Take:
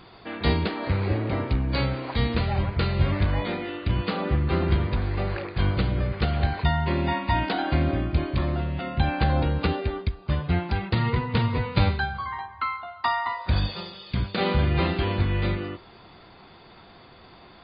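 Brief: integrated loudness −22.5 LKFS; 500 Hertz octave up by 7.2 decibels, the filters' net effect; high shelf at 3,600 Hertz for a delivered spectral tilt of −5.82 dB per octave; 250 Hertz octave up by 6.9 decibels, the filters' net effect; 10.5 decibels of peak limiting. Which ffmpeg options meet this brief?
ffmpeg -i in.wav -af "equalizer=frequency=250:width_type=o:gain=7.5,equalizer=frequency=500:width_type=o:gain=6.5,highshelf=frequency=3600:gain=5.5,volume=2.5dB,alimiter=limit=-12.5dB:level=0:latency=1" out.wav

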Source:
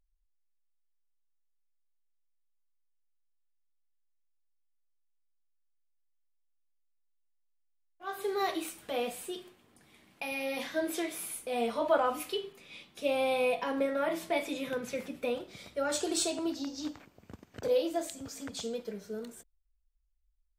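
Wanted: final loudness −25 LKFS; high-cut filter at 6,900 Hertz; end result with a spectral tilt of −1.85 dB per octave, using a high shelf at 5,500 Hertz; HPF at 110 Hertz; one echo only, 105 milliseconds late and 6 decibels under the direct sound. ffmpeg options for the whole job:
ffmpeg -i in.wav -af "highpass=110,lowpass=6900,highshelf=frequency=5500:gain=-7.5,aecho=1:1:105:0.501,volume=8.5dB" out.wav

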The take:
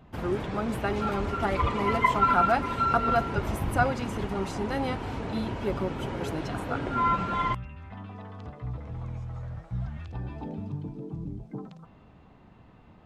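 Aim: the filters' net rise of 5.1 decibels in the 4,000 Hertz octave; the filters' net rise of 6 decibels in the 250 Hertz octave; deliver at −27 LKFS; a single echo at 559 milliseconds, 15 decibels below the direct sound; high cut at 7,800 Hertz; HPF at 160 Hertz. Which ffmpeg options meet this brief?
ffmpeg -i in.wav -af "highpass=160,lowpass=7800,equalizer=frequency=250:width_type=o:gain=8.5,equalizer=frequency=4000:width_type=o:gain=7,aecho=1:1:559:0.178,volume=-1dB" out.wav

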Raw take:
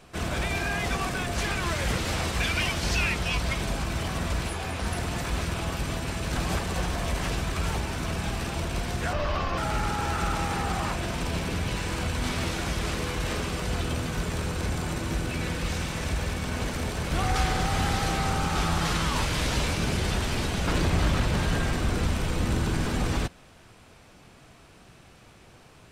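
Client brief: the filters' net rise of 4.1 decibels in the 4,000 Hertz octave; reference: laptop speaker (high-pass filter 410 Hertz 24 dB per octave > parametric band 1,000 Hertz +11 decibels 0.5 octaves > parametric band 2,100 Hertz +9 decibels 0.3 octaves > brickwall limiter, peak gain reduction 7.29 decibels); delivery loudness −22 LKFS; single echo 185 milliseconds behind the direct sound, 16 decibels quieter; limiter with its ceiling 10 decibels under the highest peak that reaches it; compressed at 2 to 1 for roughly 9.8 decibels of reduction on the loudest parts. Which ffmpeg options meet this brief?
ffmpeg -i in.wav -af "equalizer=frequency=4000:width_type=o:gain=4.5,acompressor=threshold=-38dB:ratio=2,alimiter=level_in=8dB:limit=-24dB:level=0:latency=1,volume=-8dB,highpass=frequency=410:width=0.5412,highpass=frequency=410:width=1.3066,equalizer=frequency=1000:width_type=o:width=0.5:gain=11,equalizer=frequency=2100:width_type=o:width=0.3:gain=9,aecho=1:1:185:0.158,volume=20dB,alimiter=limit=-13.5dB:level=0:latency=1" out.wav

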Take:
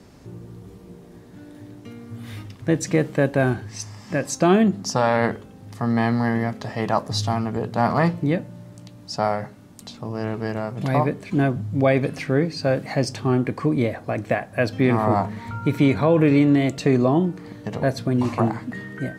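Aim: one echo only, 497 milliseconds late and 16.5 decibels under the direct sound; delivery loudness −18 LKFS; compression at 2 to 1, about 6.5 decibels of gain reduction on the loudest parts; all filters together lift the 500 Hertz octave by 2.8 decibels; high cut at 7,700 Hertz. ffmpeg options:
ffmpeg -i in.wav -af "lowpass=7700,equalizer=frequency=500:width_type=o:gain=3.5,acompressor=threshold=-23dB:ratio=2,aecho=1:1:497:0.15,volume=8dB" out.wav

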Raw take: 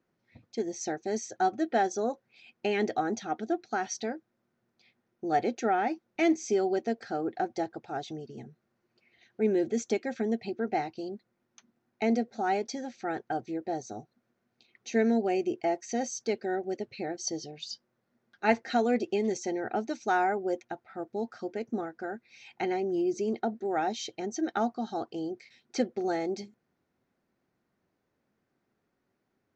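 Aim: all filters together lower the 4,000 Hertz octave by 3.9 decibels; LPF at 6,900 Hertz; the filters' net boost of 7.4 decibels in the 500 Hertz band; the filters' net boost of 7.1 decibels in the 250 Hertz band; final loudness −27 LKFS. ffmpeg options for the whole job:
ffmpeg -i in.wav -af "lowpass=6900,equalizer=frequency=250:width_type=o:gain=6.5,equalizer=frequency=500:width_type=o:gain=7.5,equalizer=frequency=4000:width_type=o:gain=-4.5,volume=-2dB" out.wav

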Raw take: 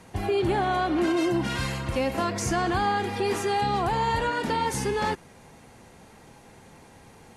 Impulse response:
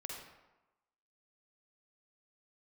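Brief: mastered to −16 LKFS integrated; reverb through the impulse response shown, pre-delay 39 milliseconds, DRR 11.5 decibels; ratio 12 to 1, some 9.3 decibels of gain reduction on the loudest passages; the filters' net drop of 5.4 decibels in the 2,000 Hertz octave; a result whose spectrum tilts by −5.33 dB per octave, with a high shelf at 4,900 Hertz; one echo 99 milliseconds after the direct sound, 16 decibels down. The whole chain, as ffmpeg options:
-filter_complex "[0:a]equalizer=frequency=2000:width_type=o:gain=-7,highshelf=frequency=4900:gain=-3,acompressor=threshold=-31dB:ratio=12,aecho=1:1:99:0.158,asplit=2[link_01][link_02];[1:a]atrim=start_sample=2205,adelay=39[link_03];[link_02][link_03]afir=irnorm=-1:irlink=0,volume=-10dB[link_04];[link_01][link_04]amix=inputs=2:normalize=0,volume=18.5dB"

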